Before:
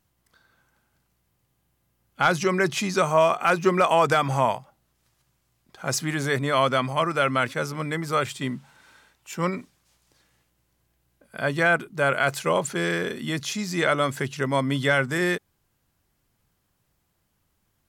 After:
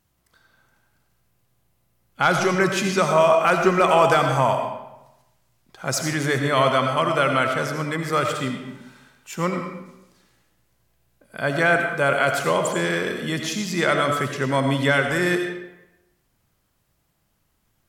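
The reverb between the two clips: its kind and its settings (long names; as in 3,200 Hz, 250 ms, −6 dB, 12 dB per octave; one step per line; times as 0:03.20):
comb and all-pass reverb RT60 0.94 s, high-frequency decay 0.75×, pre-delay 45 ms, DRR 4 dB
level +1.5 dB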